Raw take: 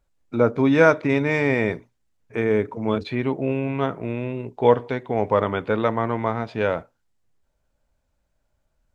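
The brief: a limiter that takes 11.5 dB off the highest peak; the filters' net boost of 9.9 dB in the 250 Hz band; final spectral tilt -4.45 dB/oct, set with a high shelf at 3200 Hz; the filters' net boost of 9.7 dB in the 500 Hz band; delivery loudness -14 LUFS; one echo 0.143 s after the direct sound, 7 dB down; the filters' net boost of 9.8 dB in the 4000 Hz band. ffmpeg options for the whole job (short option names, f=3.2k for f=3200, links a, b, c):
-af "equalizer=f=250:t=o:g=9,equalizer=f=500:t=o:g=8.5,highshelf=f=3.2k:g=7,equalizer=f=4k:t=o:g=7,alimiter=limit=-6.5dB:level=0:latency=1,aecho=1:1:143:0.447,volume=3dB"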